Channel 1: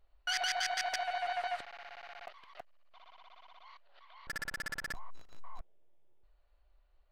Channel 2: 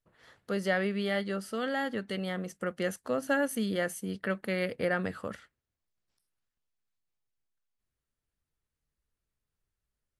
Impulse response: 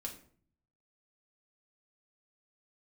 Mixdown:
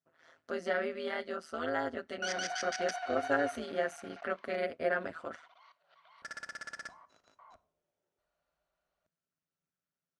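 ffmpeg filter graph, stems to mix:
-filter_complex "[0:a]adelay=1950,volume=-9dB,asplit=2[a][b];[b]volume=-6dB[c];[1:a]bass=f=250:g=-1,treble=f=4k:g=-5,aecho=1:1:7.5:0.83,tremolo=f=160:d=0.919,volume=-4dB[d];[2:a]atrim=start_sample=2205[e];[c][e]afir=irnorm=-1:irlink=0[f];[a][d][f]amix=inputs=3:normalize=0,highpass=120,equalizer=f=130:t=q:w=4:g=-9,equalizer=f=620:t=q:w=4:g=7,equalizer=f=1.4k:t=q:w=4:g=7,equalizer=f=5.9k:t=q:w=4:g=7,lowpass=f=9.3k:w=0.5412,lowpass=f=9.3k:w=1.3066"

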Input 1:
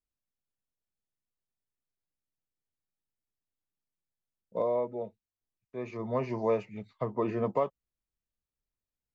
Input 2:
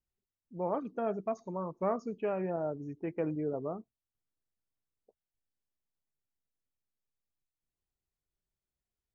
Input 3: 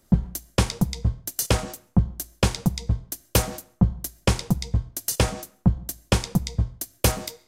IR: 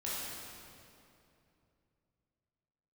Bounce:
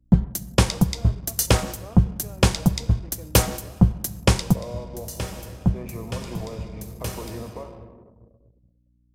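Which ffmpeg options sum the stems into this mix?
-filter_complex "[0:a]alimiter=level_in=0.5dB:limit=-24dB:level=0:latency=1:release=300,volume=-0.5dB,acompressor=threshold=-35dB:ratio=8,volume=0dB,asplit=3[a][b][c];[b]volume=-7dB[d];[1:a]volume=-12dB[e];[2:a]volume=2.5dB,asplit=2[f][g];[g]volume=-19dB[h];[c]apad=whole_len=329792[i];[f][i]sidechaincompress=threshold=-55dB:ratio=8:attack=37:release=722[j];[3:a]atrim=start_sample=2205[k];[d][h]amix=inputs=2:normalize=0[l];[l][k]afir=irnorm=-1:irlink=0[m];[a][e][j][m]amix=inputs=4:normalize=0,anlmdn=0.01,aeval=exprs='val(0)+0.000794*(sin(2*PI*60*n/s)+sin(2*PI*2*60*n/s)/2+sin(2*PI*3*60*n/s)/3+sin(2*PI*4*60*n/s)/4+sin(2*PI*5*60*n/s)/5)':c=same"

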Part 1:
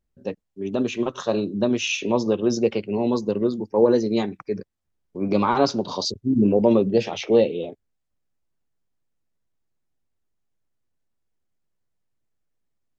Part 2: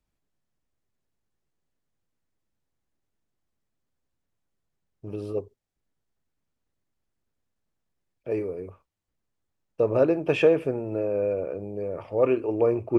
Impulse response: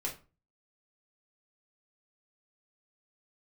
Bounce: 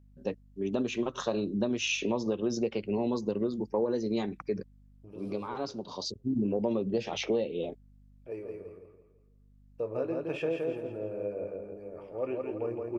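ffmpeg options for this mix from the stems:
-filter_complex "[0:a]aeval=exprs='val(0)+0.002*(sin(2*PI*50*n/s)+sin(2*PI*2*50*n/s)/2+sin(2*PI*3*50*n/s)/3+sin(2*PI*4*50*n/s)/4+sin(2*PI*5*50*n/s)/5)':c=same,volume=-2.5dB[a];[1:a]bandreject=f=50:t=h:w=6,bandreject=f=100:t=h:w=6,bandreject=f=150:t=h:w=6,flanger=delay=9:depth=4.3:regen=66:speed=0.63:shape=triangular,volume=-7.5dB,asplit=3[b][c][d];[c]volume=-4dB[e];[d]apad=whole_len=572842[f];[a][f]sidechaincompress=threshold=-51dB:ratio=8:attack=7.8:release=1110[g];[e]aecho=0:1:167|334|501|668|835:1|0.39|0.152|0.0593|0.0231[h];[g][b][h]amix=inputs=3:normalize=0,acompressor=threshold=-26dB:ratio=6"

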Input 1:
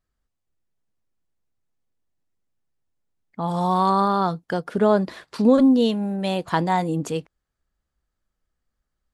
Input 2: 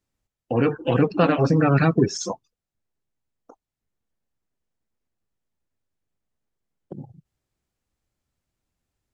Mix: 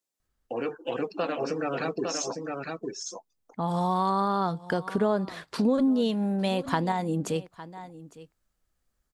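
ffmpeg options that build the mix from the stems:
-filter_complex "[0:a]adelay=200,volume=1dB,asplit=2[a][b];[b]volume=-22dB[c];[1:a]highpass=570,equalizer=f=1.5k:w=0.37:g=-11.5,volume=2.5dB,asplit=3[d][e][f];[e]volume=-5dB[g];[f]apad=whole_len=411480[h];[a][h]sidechaincompress=threshold=-42dB:ratio=8:attack=6.1:release=1390[i];[c][g]amix=inputs=2:normalize=0,aecho=0:1:856:1[j];[i][d][j]amix=inputs=3:normalize=0,acompressor=threshold=-25dB:ratio=2.5"

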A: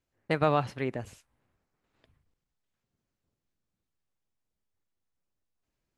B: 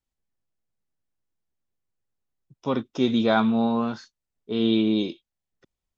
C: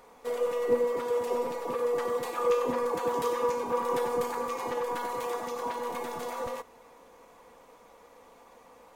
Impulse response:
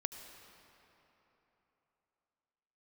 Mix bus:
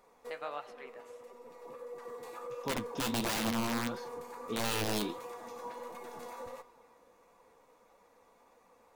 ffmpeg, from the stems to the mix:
-filter_complex "[0:a]highpass=640,volume=-12dB,asplit=3[a][b][c];[b]volume=-3.5dB[d];[1:a]aeval=exprs='(mod(6.68*val(0)+1,2)-1)/6.68':c=same,volume=-4dB,asplit=2[e][f];[f]volume=-22dB[g];[2:a]bandreject=f=3.1k:w=11,bandreject=f=133.6:t=h:w=4,bandreject=f=267.2:t=h:w=4,bandreject=f=400.8:t=h:w=4,bandreject=f=534.4:t=h:w=4,bandreject=f=668:t=h:w=4,bandreject=f=801.6:t=h:w=4,bandreject=f=935.2:t=h:w=4,bandreject=f=1.0688k:t=h:w=4,bandreject=f=1.2024k:t=h:w=4,bandreject=f=1.336k:t=h:w=4,bandreject=f=1.4696k:t=h:w=4,bandreject=f=1.6032k:t=h:w=4,bandreject=f=1.7368k:t=h:w=4,bandreject=f=1.8704k:t=h:w=4,bandreject=f=2.004k:t=h:w=4,bandreject=f=2.1376k:t=h:w=4,bandreject=f=2.2712k:t=h:w=4,bandreject=f=2.4048k:t=h:w=4,bandreject=f=2.5384k:t=h:w=4,bandreject=f=2.672k:t=h:w=4,bandreject=f=2.8056k:t=h:w=4,bandreject=f=2.9392k:t=h:w=4,bandreject=f=3.0728k:t=h:w=4,bandreject=f=3.2064k:t=h:w=4,bandreject=f=3.34k:t=h:w=4,bandreject=f=3.4736k:t=h:w=4,bandreject=f=3.6072k:t=h:w=4,bandreject=f=3.7408k:t=h:w=4,bandreject=f=3.8744k:t=h:w=4,bandreject=f=4.008k:t=h:w=4,bandreject=f=4.1416k:t=h:w=4,bandreject=f=4.2752k:t=h:w=4,bandreject=f=4.4088k:t=h:w=4,bandreject=f=4.5424k:t=h:w=4,bandreject=f=4.676k:t=h:w=4,bandreject=f=4.8096k:t=h:w=4,bandreject=f=4.9432k:t=h:w=4,bandreject=f=5.0768k:t=h:w=4,bandreject=f=5.2104k:t=h:w=4,alimiter=level_in=1.5dB:limit=-24dB:level=0:latency=1:release=275,volume=-1.5dB,volume=-7.5dB,asplit=2[h][i];[i]volume=-8.5dB[j];[c]apad=whole_len=394950[k];[h][k]sidechaincompress=threshold=-59dB:ratio=8:attack=25:release=1070[l];[3:a]atrim=start_sample=2205[m];[d][g][j]amix=inputs=3:normalize=0[n];[n][m]afir=irnorm=-1:irlink=0[o];[a][e][l][o]amix=inputs=4:normalize=0,flanger=delay=5:depth=9.4:regen=53:speed=1.5:shape=sinusoidal,alimiter=level_in=1.5dB:limit=-24dB:level=0:latency=1:release=37,volume=-1.5dB"

